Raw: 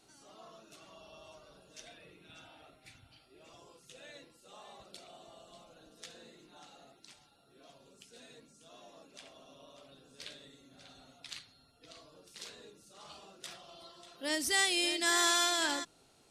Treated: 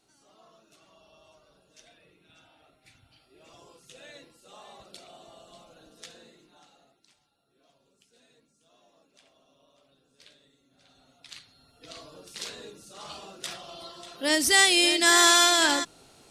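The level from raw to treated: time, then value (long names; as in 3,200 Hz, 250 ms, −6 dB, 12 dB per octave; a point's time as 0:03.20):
0:02.59 −4 dB
0:03.63 +4 dB
0:06.03 +4 dB
0:07.10 −8 dB
0:10.64 −8 dB
0:11.30 −0.5 dB
0:11.96 +10 dB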